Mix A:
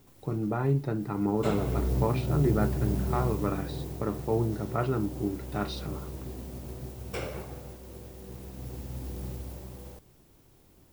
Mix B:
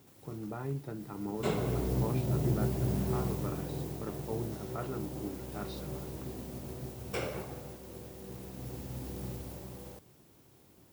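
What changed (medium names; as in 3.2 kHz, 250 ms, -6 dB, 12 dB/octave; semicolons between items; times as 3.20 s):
speech -10.0 dB; master: add high-pass 94 Hz 12 dB/octave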